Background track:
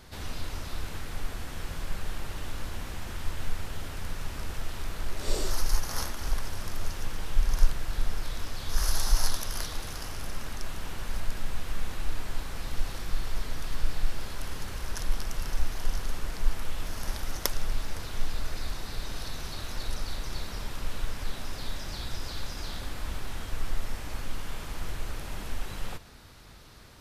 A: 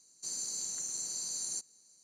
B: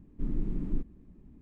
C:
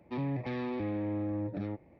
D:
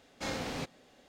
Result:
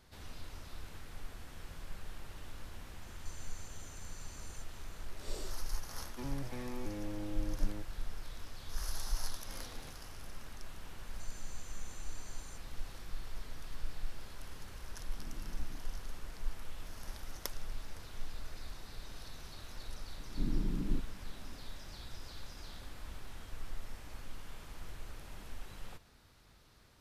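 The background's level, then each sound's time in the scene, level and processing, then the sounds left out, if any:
background track -12 dB
3.03 add A -4.5 dB + compressor 4:1, threshold -52 dBFS
6.06 add C -8.5 dB
9.26 add D -17.5 dB
10.97 add A -13 dB + compressor, threshold -40 dBFS
14.98 add B -17.5 dB
20.18 add B -2 dB

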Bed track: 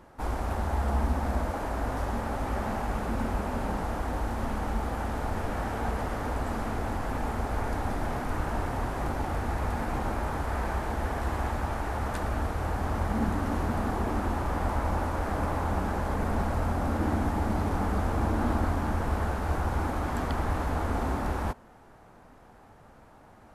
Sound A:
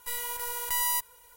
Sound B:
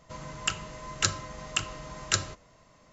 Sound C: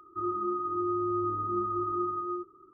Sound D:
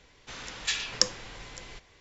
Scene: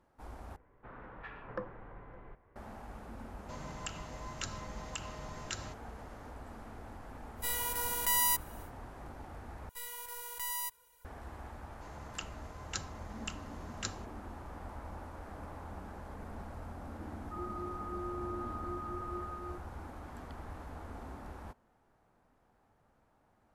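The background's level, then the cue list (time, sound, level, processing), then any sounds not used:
bed track -17 dB
0.56 replace with D -3.5 dB + LPF 1400 Hz 24 dB/oct
3.39 add B -5.5 dB + compressor 2.5:1, threshold -33 dBFS
7.36 add A -1 dB, fades 0.10 s
9.69 replace with A -10 dB
11.71 add B -13.5 dB
17.15 add C -11 dB

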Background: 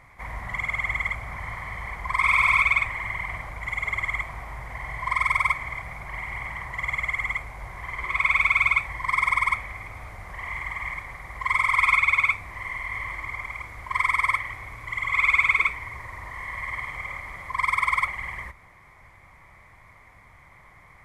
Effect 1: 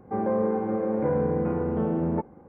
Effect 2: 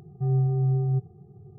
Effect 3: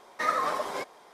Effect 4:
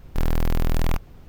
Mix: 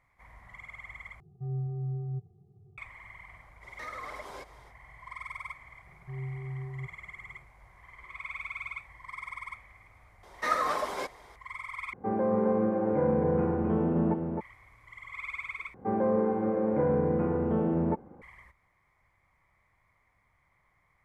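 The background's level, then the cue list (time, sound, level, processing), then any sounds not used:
background -18.5 dB
1.2 replace with 2 -12.5 dB + bell 95 Hz +5.5 dB
3.6 add 3 -4 dB, fades 0.05 s + compressor 3:1, threshold -38 dBFS
5.87 add 2 -14.5 dB
10.23 add 3 -1 dB
11.93 replace with 1 -2.5 dB + echo 0.264 s -4.5 dB
15.74 replace with 1 -1.5 dB
not used: 4

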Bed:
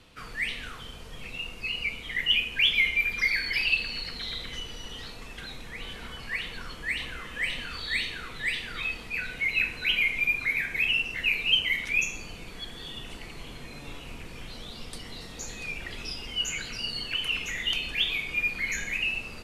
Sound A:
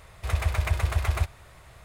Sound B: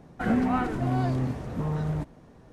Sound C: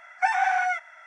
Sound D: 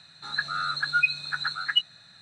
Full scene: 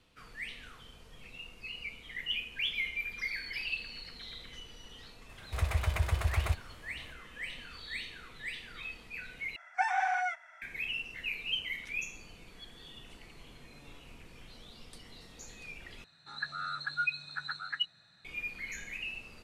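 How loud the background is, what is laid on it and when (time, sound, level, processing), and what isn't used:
bed -11 dB
5.29 add A -5 dB
9.56 replace with C -7 dB
16.04 replace with D -7.5 dB + high shelf 3500 Hz -6.5 dB
not used: B

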